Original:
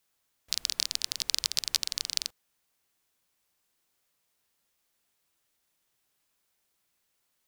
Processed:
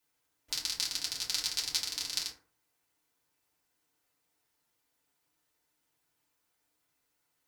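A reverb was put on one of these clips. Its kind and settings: FDN reverb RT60 0.46 s, low-frequency decay 1×, high-frequency decay 0.45×, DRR -6.5 dB; gain -7.5 dB

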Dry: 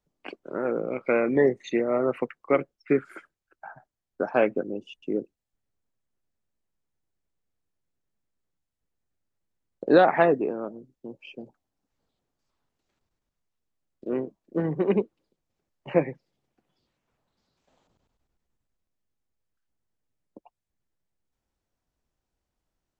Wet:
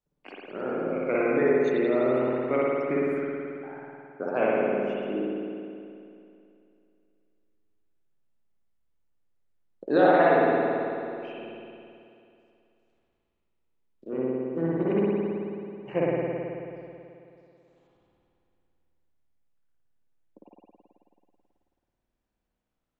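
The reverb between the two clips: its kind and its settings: spring tank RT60 2.6 s, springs 54 ms, chirp 45 ms, DRR -6.5 dB; gain -7 dB

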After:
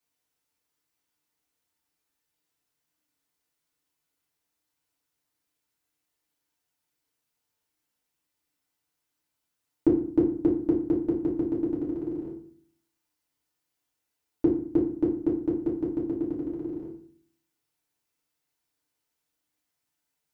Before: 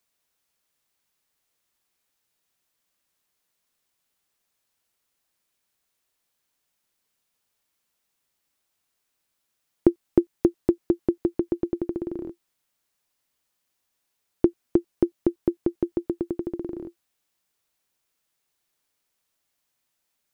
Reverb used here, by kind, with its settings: FDN reverb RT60 0.52 s, low-frequency decay 1.45×, high-frequency decay 0.7×, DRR -6 dB; gain -11 dB

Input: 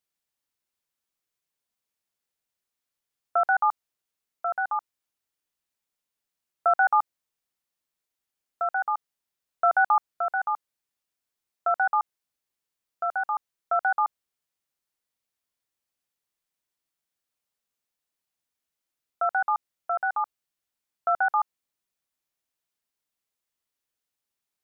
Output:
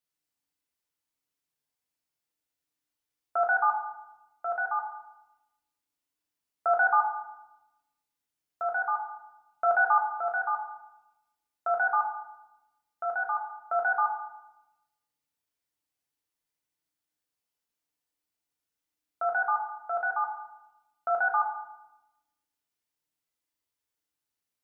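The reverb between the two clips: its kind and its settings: FDN reverb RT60 0.92 s, low-frequency decay 1.55×, high-frequency decay 0.9×, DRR -0.5 dB; gain -5 dB

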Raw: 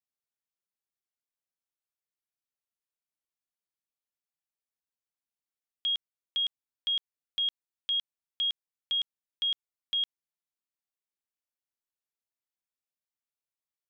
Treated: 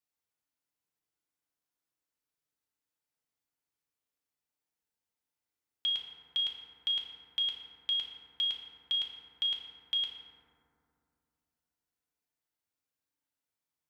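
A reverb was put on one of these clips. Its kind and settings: FDN reverb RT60 2.5 s, low-frequency decay 1.35×, high-frequency decay 0.3×, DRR -2 dB

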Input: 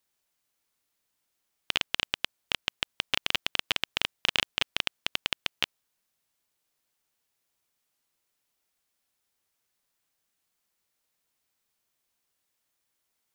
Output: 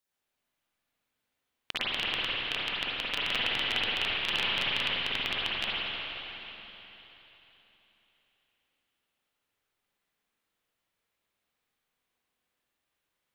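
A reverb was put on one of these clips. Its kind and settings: spring tank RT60 3.7 s, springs 44/48/53 ms, chirp 35 ms, DRR -9.5 dB; gain -8 dB

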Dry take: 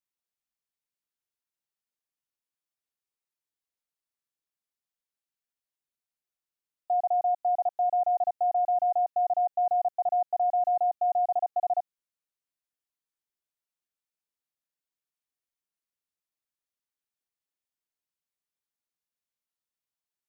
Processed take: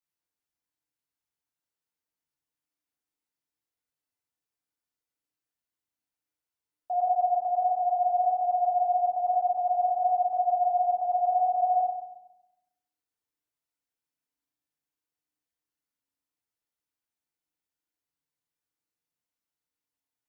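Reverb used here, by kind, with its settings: FDN reverb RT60 0.88 s, low-frequency decay 1.55×, high-frequency decay 0.45×, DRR -4 dB; gain -4 dB

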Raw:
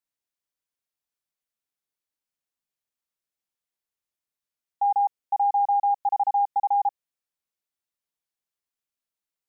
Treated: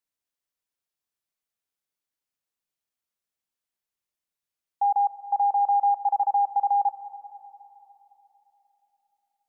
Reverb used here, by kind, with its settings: digital reverb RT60 3.5 s, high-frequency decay 0.9×, pre-delay 0.1 s, DRR 13 dB

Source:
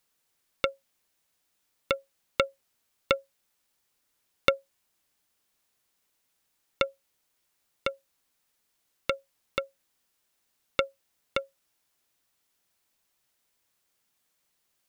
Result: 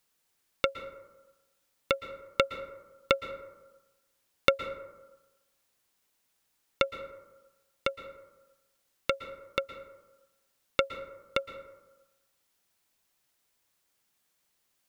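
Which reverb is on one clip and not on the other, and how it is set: plate-style reverb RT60 1.1 s, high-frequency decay 0.35×, pre-delay 0.105 s, DRR 11.5 dB

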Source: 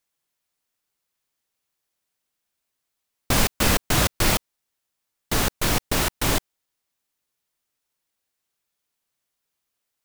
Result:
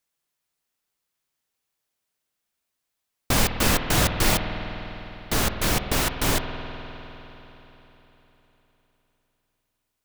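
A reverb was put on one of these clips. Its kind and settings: spring tank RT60 3.9 s, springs 50 ms, chirp 40 ms, DRR 6.5 dB; gain -1 dB

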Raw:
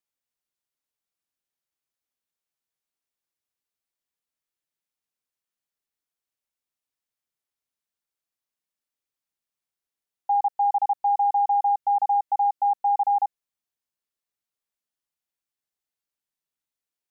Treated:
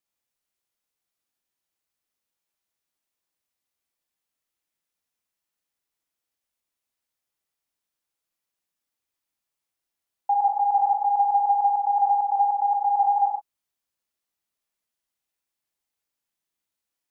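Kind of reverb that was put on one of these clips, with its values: non-linear reverb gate 0.16 s flat, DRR 0.5 dB; gain +1.5 dB

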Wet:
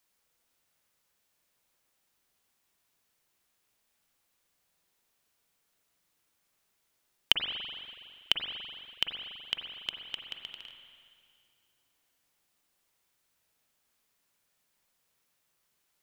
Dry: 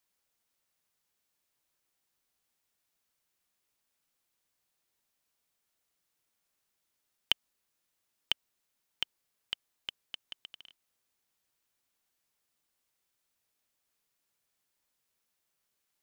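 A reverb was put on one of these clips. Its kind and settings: spring tank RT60 2.2 s, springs 41/47 ms, chirp 75 ms, DRR 3 dB; gain +4.5 dB

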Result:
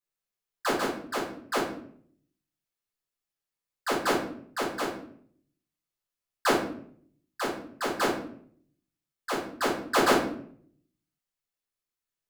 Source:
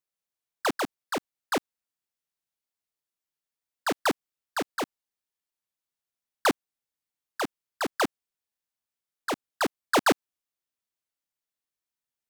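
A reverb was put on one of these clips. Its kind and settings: shoebox room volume 79 m³, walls mixed, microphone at 2 m; gain -8 dB

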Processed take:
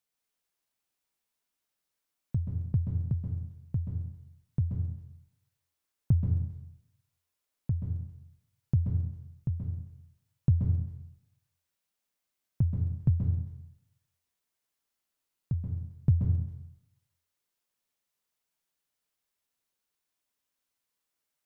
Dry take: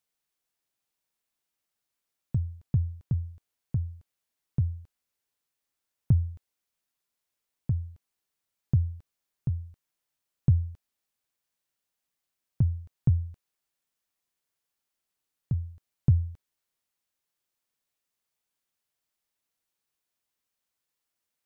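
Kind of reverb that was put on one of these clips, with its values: plate-style reverb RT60 0.81 s, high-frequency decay 0.85×, pre-delay 0.12 s, DRR 1 dB; gain -2.5 dB

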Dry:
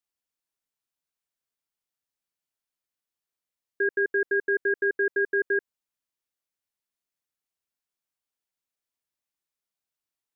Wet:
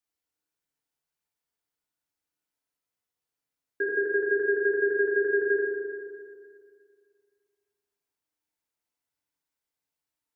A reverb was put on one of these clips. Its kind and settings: FDN reverb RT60 2.2 s, low-frequency decay 1×, high-frequency decay 0.3×, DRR -2.5 dB; gain -2 dB

